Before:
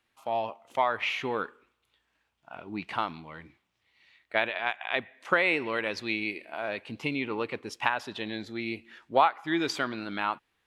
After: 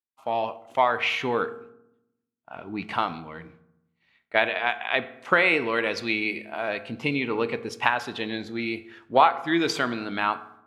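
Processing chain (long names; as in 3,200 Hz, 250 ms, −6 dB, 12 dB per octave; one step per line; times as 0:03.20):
downward expander −56 dBFS
convolution reverb RT60 0.85 s, pre-delay 3 ms, DRR 11.5 dB
one half of a high-frequency compander decoder only
level +4.5 dB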